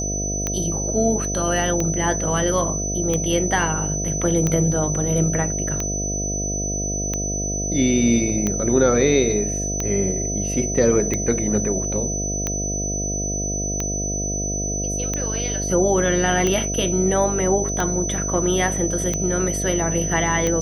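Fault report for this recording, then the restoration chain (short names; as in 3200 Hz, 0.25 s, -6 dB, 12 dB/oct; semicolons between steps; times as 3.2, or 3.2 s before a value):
buzz 50 Hz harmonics 14 -27 dBFS
tick 45 rpm -9 dBFS
tone 6000 Hz -25 dBFS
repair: de-click; de-hum 50 Hz, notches 14; notch 6000 Hz, Q 30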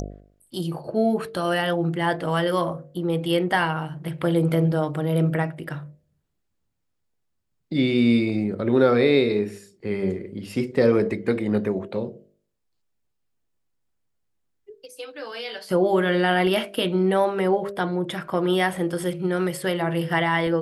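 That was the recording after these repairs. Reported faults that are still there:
none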